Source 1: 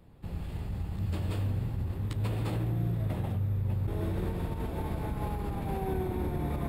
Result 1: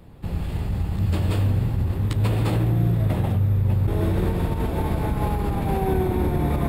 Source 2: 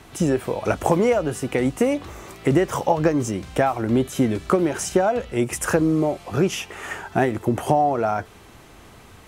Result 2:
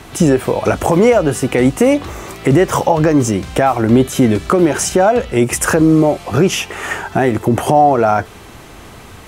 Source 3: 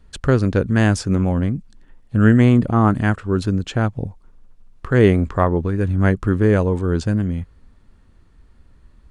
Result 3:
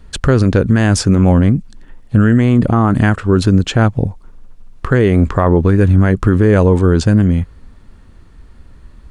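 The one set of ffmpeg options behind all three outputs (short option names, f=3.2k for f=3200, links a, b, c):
-af "alimiter=level_in=11dB:limit=-1dB:release=50:level=0:latency=1,volume=-1dB"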